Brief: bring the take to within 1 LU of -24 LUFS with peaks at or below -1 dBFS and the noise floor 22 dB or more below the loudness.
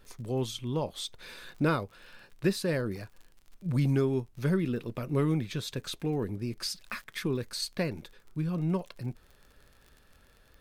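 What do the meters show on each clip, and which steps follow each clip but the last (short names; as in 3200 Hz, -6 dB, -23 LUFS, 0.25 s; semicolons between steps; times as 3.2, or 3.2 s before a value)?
ticks 42/s; loudness -32.0 LUFS; peak -15.5 dBFS; loudness target -24.0 LUFS
-> de-click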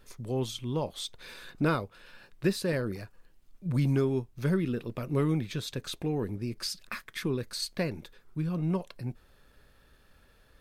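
ticks 0.094/s; loudness -32.0 LUFS; peak -15.5 dBFS; loudness target -24.0 LUFS
-> gain +8 dB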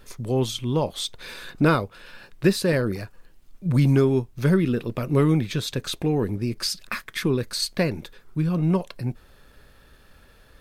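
loudness -24.0 LUFS; peak -7.5 dBFS; noise floor -54 dBFS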